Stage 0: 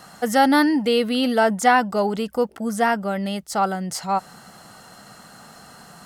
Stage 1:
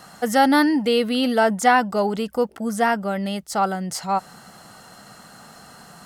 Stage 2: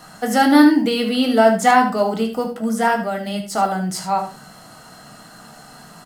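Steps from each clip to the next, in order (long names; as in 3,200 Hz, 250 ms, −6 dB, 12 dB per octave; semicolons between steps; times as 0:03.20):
no processing that can be heard
one scale factor per block 7 bits; single-tap delay 75 ms −10.5 dB; on a send at −2.5 dB: convolution reverb RT60 0.30 s, pre-delay 3 ms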